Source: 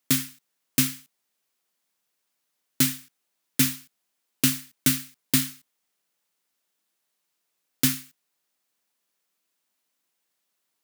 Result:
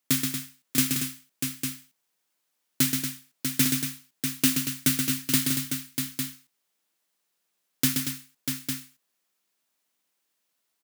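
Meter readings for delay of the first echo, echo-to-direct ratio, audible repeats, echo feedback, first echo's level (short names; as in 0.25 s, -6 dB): 0.127 s, -1.0 dB, 4, no steady repeat, -5.5 dB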